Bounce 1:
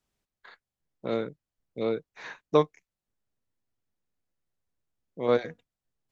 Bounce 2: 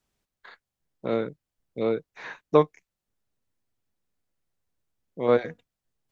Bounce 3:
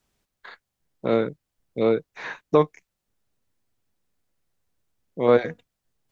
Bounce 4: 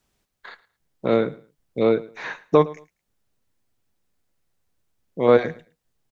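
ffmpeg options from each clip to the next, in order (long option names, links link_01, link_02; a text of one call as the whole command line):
ffmpeg -i in.wav -filter_complex "[0:a]acrossover=split=3300[link_01][link_02];[link_02]acompressor=threshold=-57dB:ratio=4:attack=1:release=60[link_03];[link_01][link_03]amix=inputs=2:normalize=0,volume=3dB" out.wav
ffmpeg -i in.wav -af "alimiter=level_in=9.5dB:limit=-1dB:release=50:level=0:latency=1,volume=-4.5dB" out.wav
ffmpeg -i in.wav -af "aecho=1:1:110|220:0.1|0.021,volume=2dB" out.wav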